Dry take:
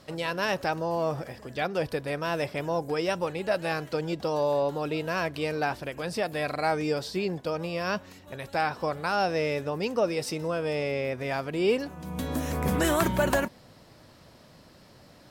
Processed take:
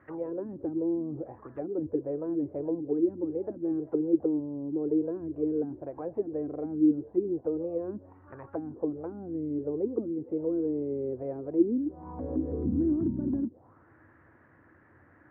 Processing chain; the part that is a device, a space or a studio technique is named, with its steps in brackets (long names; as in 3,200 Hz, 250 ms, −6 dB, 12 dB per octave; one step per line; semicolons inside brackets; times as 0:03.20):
envelope filter bass rig (envelope-controlled low-pass 250–1,900 Hz down, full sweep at −23.5 dBFS; loudspeaker in its box 67–2,000 Hz, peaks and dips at 87 Hz +10 dB, 180 Hz −8 dB, 320 Hz +9 dB, 610 Hz −6 dB)
level −7.5 dB